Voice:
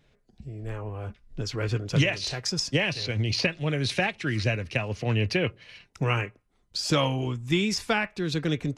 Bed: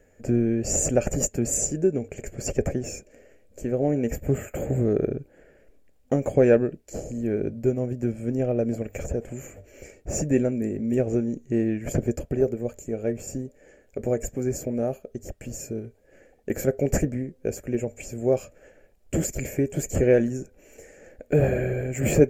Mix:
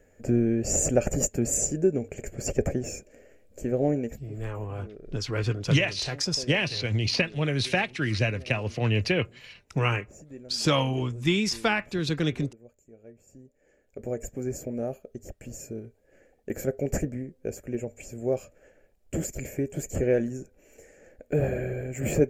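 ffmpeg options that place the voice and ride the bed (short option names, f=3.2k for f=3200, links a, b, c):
-filter_complex "[0:a]adelay=3750,volume=0.5dB[a];[1:a]volume=16.5dB,afade=t=out:st=3.9:d=0.3:silence=0.0841395,afade=t=in:st=13.29:d=1.09:silence=0.133352[b];[a][b]amix=inputs=2:normalize=0"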